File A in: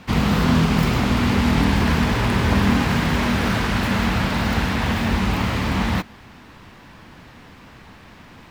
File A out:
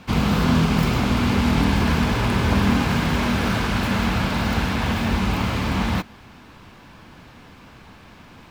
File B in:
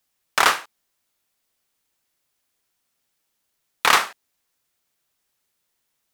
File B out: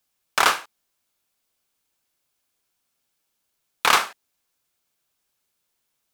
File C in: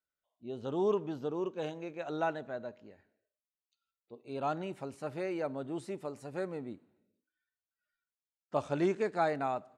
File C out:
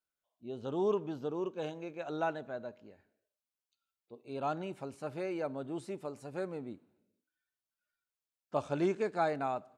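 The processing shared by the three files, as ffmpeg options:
-af "bandreject=f=1.9k:w=13,volume=-1dB"

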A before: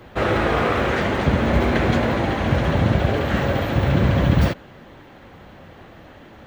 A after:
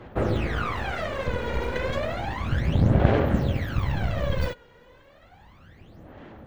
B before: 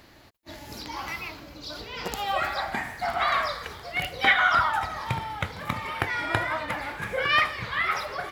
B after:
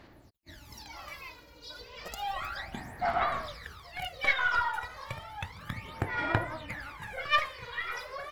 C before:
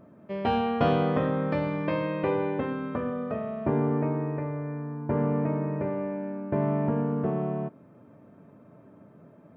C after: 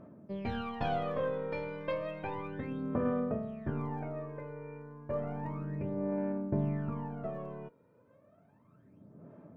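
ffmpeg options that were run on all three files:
-af "aeval=exprs='0.596*(cos(1*acos(clip(val(0)/0.596,-1,1)))-cos(1*PI/2))+0.188*(cos(2*acos(clip(val(0)/0.596,-1,1)))-cos(2*PI/2))':c=same,aphaser=in_gain=1:out_gain=1:delay=2.1:decay=0.74:speed=0.32:type=sinusoidal,volume=-11.5dB"

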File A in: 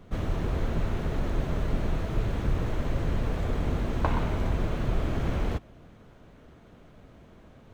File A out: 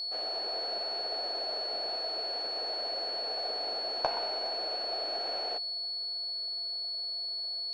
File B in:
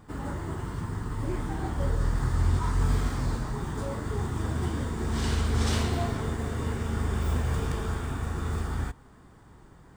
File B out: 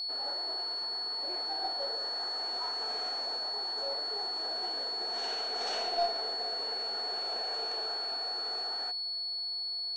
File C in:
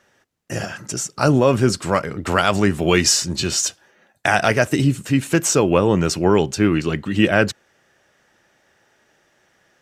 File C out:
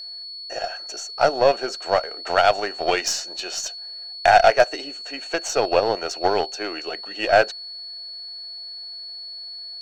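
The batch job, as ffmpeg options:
-af "highpass=f=470:w=0.5412,highpass=f=470:w=1.3066,equalizer=f=710:t=q:w=4:g=10,equalizer=f=1.1k:t=q:w=4:g=-8,equalizer=f=2.1k:t=q:w=4:g=-5,equalizer=f=3.4k:t=q:w=4:g=-5,equalizer=f=4.9k:t=q:w=4:g=-6,lowpass=f=6k:w=0.5412,lowpass=f=6k:w=1.3066,aeval=exprs='val(0)+0.0316*sin(2*PI*4400*n/s)':c=same,aeval=exprs='0.794*(cos(1*acos(clip(val(0)/0.794,-1,1)))-cos(1*PI/2))+0.0355*(cos(6*acos(clip(val(0)/0.794,-1,1)))-cos(6*PI/2))+0.0355*(cos(7*acos(clip(val(0)/0.794,-1,1)))-cos(7*PI/2))+0.00562*(cos(8*acos(clip(val(0)/0.794,-1,1)))-cos(8*PI/2))':c=same"

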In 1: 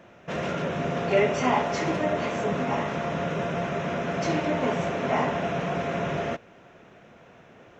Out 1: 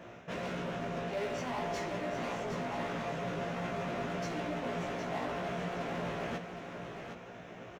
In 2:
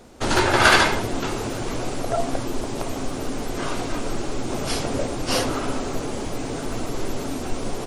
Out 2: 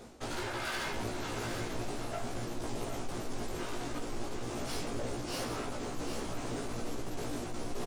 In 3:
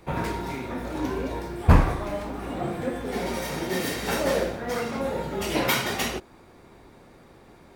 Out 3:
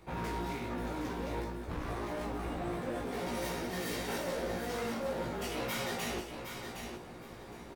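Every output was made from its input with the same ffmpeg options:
-filter_complex "[0:a]areverse,acompressor=threshold=-36dB:ratio=4,areverse,volume=36dB,asoftclip=hard,volume=-36dB,asplit=2[a][b];[b]adelay=17,volume=-2dB[c];[a][c]amix=inputs=2:normalize=0,aecho=1:1:764|1528|2292:0.422|0.0886|0.0186"

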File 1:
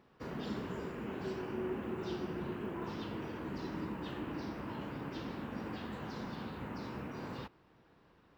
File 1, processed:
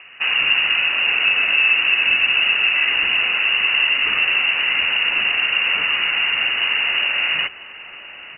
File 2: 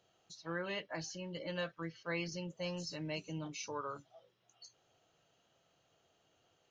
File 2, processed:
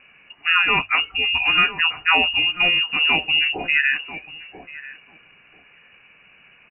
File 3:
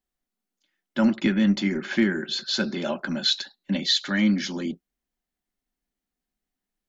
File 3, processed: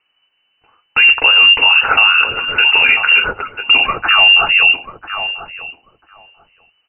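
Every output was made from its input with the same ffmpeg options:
-filter_complex "[0:a]asplit=2[a][b];[b]acompressor=threshold=-38dB:ratio=6,volume=-1dB[c];[a][c]amix=inputs=2:normalize=0,lowpass=f=2.6k:t=q:w=0.5098,lowpass=f=2.6k:t=q:w=0.6013,lowpass=f=2.6k:t=q:w=0.9,lowpass=f=2.6k:t=q:w=2.563,afreqshift=-3000,bandreject=f=50:t=h:w=6,bandreject=f=100:t=h:w=6,asplit=2[d][e];[e]adelay=990,lowpass=f=990:p=1,volume=-11dB,asplit=2[f][g];[g]adelay=990,lowpass=f=990:p=1,volume=0.16[h];[d][f][h]amix=inputs=3:normalize=0,alimiter=level_in=19dB:limit=-1dB:release=50:level=0:latency=1,volume=-1dB"

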